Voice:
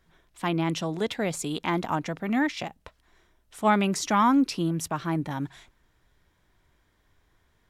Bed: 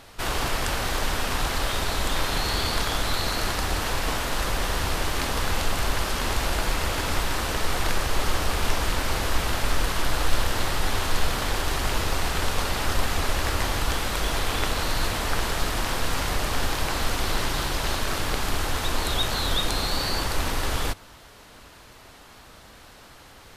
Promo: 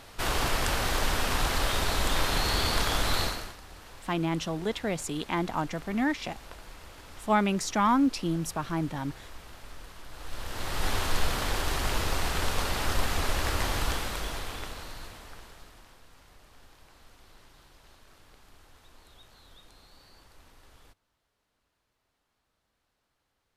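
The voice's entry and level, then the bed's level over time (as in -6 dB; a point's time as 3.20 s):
3.65 s, -2.5 dB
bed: 3.23 s -1.5 dB
3.59 s -22 dB
10.08 s -22 dB
10.86 s -3.5 dB
13.85 s -3.5 dB
16.06 s -30.5 dB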